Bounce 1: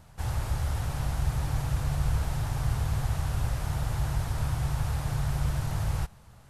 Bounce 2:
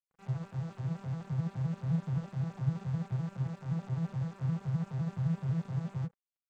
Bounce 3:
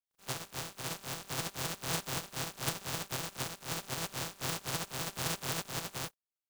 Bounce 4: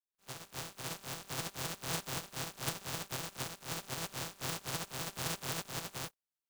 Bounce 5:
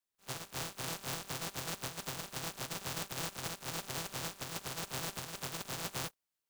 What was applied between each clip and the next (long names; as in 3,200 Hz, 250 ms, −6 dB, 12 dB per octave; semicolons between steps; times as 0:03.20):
vocoder with an arpeggio as carrier major triad, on C3, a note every 86 ms; dead-zone distortion −51.5 dBFS
compressing power law on the bin magnitudes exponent 0.27; parametric band 2,000 Hz −3 dB 0.55 octaves; level −4 dB
fade in at the beginning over 0.60 s; level −2.5 dB
compressor whose output falls as the input rises −41 dBFS, ratio −0.5; level +2 dB